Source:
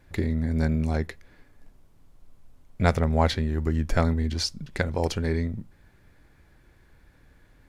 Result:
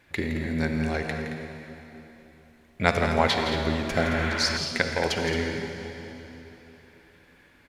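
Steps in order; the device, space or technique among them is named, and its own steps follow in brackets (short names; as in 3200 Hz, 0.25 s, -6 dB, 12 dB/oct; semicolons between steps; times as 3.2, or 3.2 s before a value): stadium PA (HPF 210 Hz 6 dB/oct; bell 2500 Hz +8 dB 1.4 oct; loudspeakers at several distances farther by 57 m -10 dB, 76 m -11 dB; reverb RT60 3.6 s, pre-delay 44 ms, DRR 4.5 dB); spectral repair 4–4.54, 820–3600 Hz before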